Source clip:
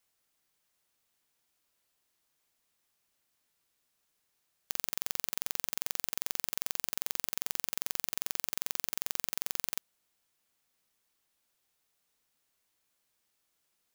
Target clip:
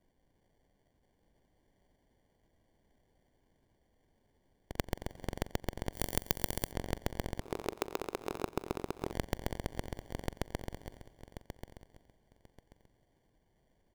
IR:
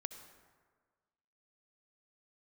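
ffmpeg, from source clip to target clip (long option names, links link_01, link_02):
-filter_complex "[0:a]asplit=2[link_01][link_02];[1:a]atrim=start_sample=2205,asetrate=38367,aresample=44100[link_03];[link_02][link_03]afir=irnorm=-1:irlink=0,volume=-10dB[link_04];[link_01][link_04]amix=inputs=2:normalize=0,aresample=8000,aresample=44100,acrusher=samples=34:mix=1:aa=0.000001,lowshelf=frequency=100:gain=11.5,aecho=1:1:1085|2170|3255:0.562|0.118|0.0248,asplit=3[link_05][link_06][link_07];[link_05]afade=type=out:start_time=7.39:duration=0.02[link_08];[link_06]aeval=exprs='val(0)*sin(2*PI*390*n/s)':channel_layout=same,afade=type=in:start_time=7.39:duration=0.02,afade=type=out:start_time=9.11:duration=0.02[link_09];[link_07]afade=type=in:start_time=9.11:duration=0.02[link_10];[link_08][link_09][link_10]amix=inputs=3:normalize=0,acompressor=threshold=-39dB:ratio=3,asettb=1/sr,asplit=3[link_11][link_12][link_13];[link_11]atrim=end=5.934[link_14];[link_12]atrim=start=5.93:end=6.72,asetpts=PTS-STARTPTS,afade=type=in:duration=0.004:curve=qsin,afade=type=out:start_time=0.786:duration=0.004:curve=qsin,aemphasis=mode=production:type=75kf[link_15];[link_13]atrim=start=6.716[link_16];[link_14][link_15]acrossfade=duration=0.004:curve1=hsin:curve2=qsin[link_17];[link_17][link_16]acrossfade=duration=0.004:curve1=qsin:curve2=hsin,volume=7dB"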